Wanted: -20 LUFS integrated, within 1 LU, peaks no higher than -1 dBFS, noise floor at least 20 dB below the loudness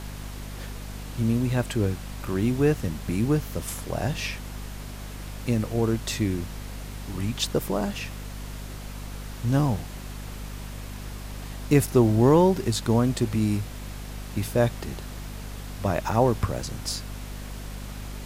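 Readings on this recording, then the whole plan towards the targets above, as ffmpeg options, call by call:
hum 50 Hz; harmonics up to 250 Hz; hum level -34 dBFS; noise floor -38 dBFS; noise floor target -46 dBFS; loudness -25.5 LUFS; peak -7.0 dBFS; loudness target -20.0 LUFS
-> -af "bandreject=f=50:t=h:w=4,bandreject=f=100:t=h:w=4,bandreject=f=150:t=h:w=4,bandreject=f=200:t=h:w=4,bandreject=f=250:t=h:w=4"
-af "afftdn=nr=8:nf=-38"
-af "volume=5.5dB"

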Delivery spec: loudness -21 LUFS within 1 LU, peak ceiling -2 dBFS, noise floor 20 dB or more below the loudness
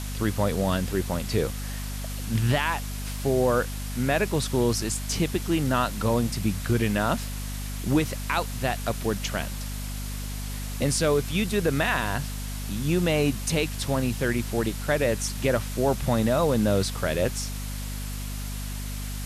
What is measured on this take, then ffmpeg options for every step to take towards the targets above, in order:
hum 50 Hz; harmonics up to 250 Hz; hum level -30 dBFS; noise floor -33 dBFS; noise floor target -47 dBFS; loudness -26.5 LUFS; peak -11.0 dBFS; loudness target -21.0 LUFS
-> -af "bandreject=f=50:t=h:w=6,bandreject=f=100:t=h:w=6,bandreject=f=150:t=h:w=6,bandreject=f=200:t=h:w=6,bandreject=f=250:t=h:w=6"
-af "afftdn=nr=14:nf=-33"
-af "volume=5.5dB"

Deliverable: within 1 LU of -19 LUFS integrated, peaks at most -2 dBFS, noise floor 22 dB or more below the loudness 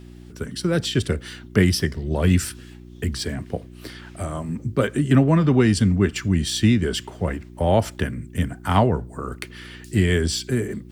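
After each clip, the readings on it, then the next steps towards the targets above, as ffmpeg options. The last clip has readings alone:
hum 60 Hz; harmonics up to 360 Hz; hum level -41 dBFS; loudness -22.0 LUFS; peak -4.5 dBFS; loudness target -19.0 LUFS
-> -af "bandreject=f=60:t=h:w=4,bandreject=f=120:t=h:w=4,bandreject=f=180:t=h:w=4,bandreject=f=240:t=h:w=4,bandreject=f=300:t=h:w=4,bandreject=f=360:t=h:w=4"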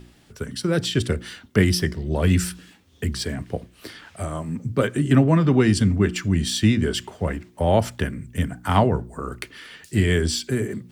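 hum none; loudness -22.5 LUFS; peak -4.5 dBFS; loudness target -19.0 LUFS
-> -af "volume=3.5dB,alimiter=limit=-2dB:level=0:latency=1"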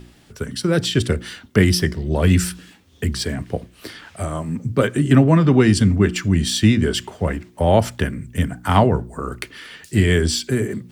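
loudness -19.0 LUFS; peak -2.0 dBFS; noise floor -51 dBFS

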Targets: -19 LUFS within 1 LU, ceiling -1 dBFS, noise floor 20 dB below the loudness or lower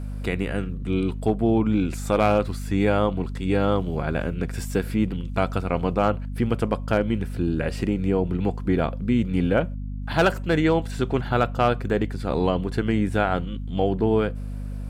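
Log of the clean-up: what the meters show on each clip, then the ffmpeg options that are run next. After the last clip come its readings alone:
hum 50 Hz; harmonics up to 250 Hz; hum level -28 dBFS; loudness -24.0 LUFS; peak -7.5 dBFS; loudness target -19.0 LUFS
-> -af "bandreject=f=50:t=h:w=4,bandreject=f=100:t=h:w=4,bandreject=f=150:t=h:w=4,bandreject=f=200:t=h:w=4,bandreject=f=250:t=h:w=4"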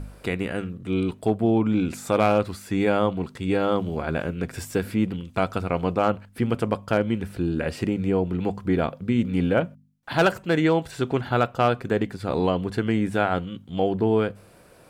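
hum none; loudness -24.5 LUFS; peak -7.5 dBFS; loudness target -19.0 LUFS
-> -af "volume=5.5dB"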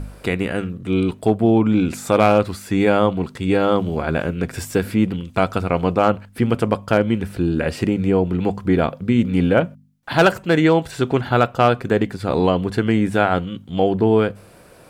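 loudness -19.0 LUFS; peak -2.0 dBFS; noise floor -47 dBFS

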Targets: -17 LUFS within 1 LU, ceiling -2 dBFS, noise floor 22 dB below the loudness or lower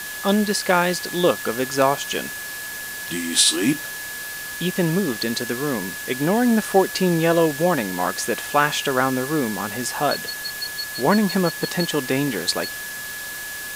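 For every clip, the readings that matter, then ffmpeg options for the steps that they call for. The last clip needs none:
steady tone 1700 Hz; tone level -32 dBFS; noise floor -32 dBFS; noise floor target -44 dBFS; loudness -21.5 LUFS; peak -3.0 dBFS; loudness target -17.0 LUFS
-> -af "bandreject=f=1.7k:w=30"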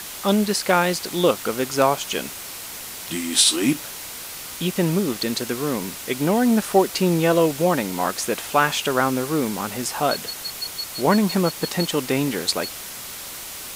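steady tone none; noise floor -35 dBFS; noise floor target -44 dBFS
-> -af "afftdn=nr=9:nf=-35"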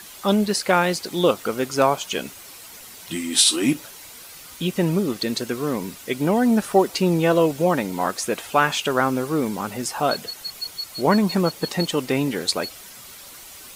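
noise floor -42 dBFS; noise floor target -44 dBFS
-> -af "afftdn=nr=6:nf=-42"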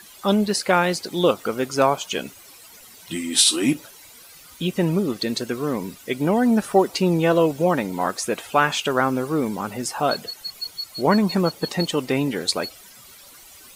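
noise floor -46 dBFS; loudness -22.0 LUFS; peak -3.0 dBFS; loudness target -17.0 LUFS
-> -af "volume=5dB,alimiter=limit=-2dB:level=0:latency=1"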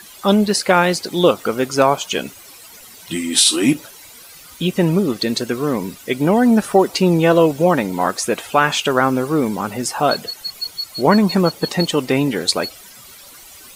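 loudness -17.5 LUFS; peak -2.0 dBFS; noise floor -41 dBFS

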